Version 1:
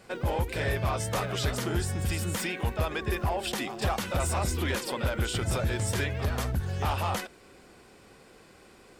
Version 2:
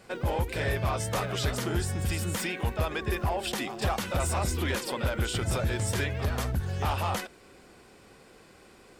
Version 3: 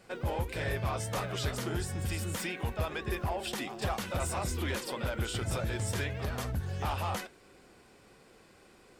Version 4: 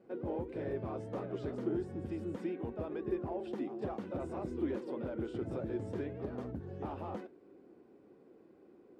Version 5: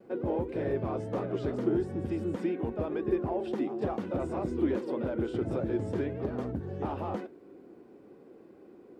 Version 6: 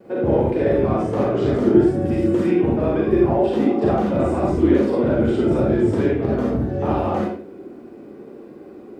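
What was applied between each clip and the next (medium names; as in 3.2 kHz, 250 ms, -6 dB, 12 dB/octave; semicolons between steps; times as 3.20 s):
no audible change
flange 1.6 Hz, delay 5.4 ms, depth 4.6 ms, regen -73%
band-pass filter 320 Hz, Q 2.2; trim +5 dB
vibrato 0.63 Hz 20 cents; trim +7 dB
reverberation RT60 0.45 s, pre-delay 38 ms, DRR -3 dB; trim +8 dB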